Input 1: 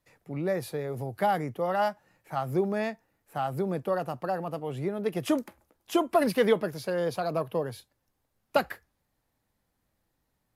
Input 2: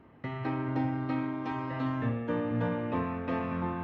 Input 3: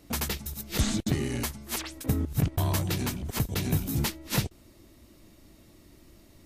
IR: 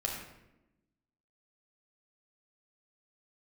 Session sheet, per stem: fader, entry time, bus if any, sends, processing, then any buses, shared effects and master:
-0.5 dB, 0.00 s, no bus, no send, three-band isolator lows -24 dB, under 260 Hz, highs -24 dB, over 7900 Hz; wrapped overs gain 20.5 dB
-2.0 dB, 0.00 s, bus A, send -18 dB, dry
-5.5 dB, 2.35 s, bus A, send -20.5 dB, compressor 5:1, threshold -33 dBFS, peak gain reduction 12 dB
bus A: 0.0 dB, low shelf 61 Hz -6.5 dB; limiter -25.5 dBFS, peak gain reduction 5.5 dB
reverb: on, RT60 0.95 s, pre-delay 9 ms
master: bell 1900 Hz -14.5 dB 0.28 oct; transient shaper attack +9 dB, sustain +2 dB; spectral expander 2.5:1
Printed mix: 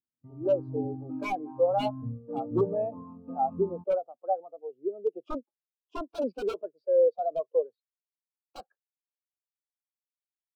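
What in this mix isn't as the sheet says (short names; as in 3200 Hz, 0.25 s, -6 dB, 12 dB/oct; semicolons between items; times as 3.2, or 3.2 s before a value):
stem 3: muted; master: missing transient shaper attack +9 dB, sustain +2 dB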